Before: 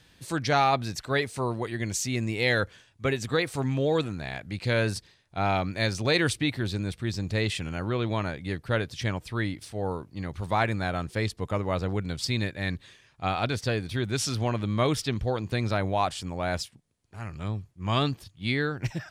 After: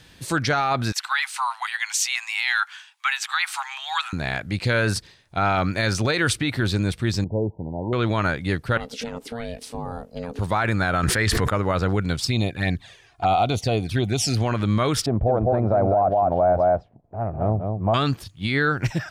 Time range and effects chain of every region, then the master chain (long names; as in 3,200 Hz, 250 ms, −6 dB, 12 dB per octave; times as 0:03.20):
0:00.92–0:04.13: Butterworth high-pass 780 Hz 96 dB per octave + parametric band 2,900 Hz +5 dB 0.96 octaves
0:07.24–0:07.93: linear-phase brick-wall low-pass 1,000 Hz + spectral tilt +2 dB per octave
0:08.77–0:10.39: parametric band 1,700 Hz −4.5 dB 0.69 octaves + downward compressor 12 to 1, threshold −31 dBFS + ring modulation 350 Hz
0:11.03–0:11.50: parametric band 1,800 Hz +9 dB 0.54 octaves + envelope flattener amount 100%
0:12.20–0:14.37: parametric band 720 Hz +13 dB 0.29 octaves + flanger swept by the level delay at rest 3.3 ms, full sweep at −23.5 dBFS
0:15.06–0:17.94: low-pass with resonance 680 Hz, resonance Q 5.4 + single-tap delay 203 ms −5 dB
whole clip: dynamic equaliser 1,400 Hz, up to +8 dB, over −47 dBFS, Q 2.9; brickwall limiter −20 dBFS; level +8 dB